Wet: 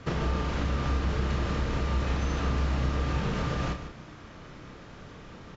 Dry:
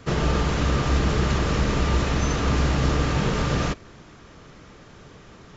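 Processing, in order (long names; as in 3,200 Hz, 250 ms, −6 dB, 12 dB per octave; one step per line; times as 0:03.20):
parametric band 400 Hz −3 dB 0.25 octaves
downward compressor 4 to 1, threshold −28 dBFS, peak gain reduction 10.5 dB
high-frequency loss of the air 80 metres
double-tracking delay 32 ms −7 dB
single-tap delay 149 ms −10.5 dB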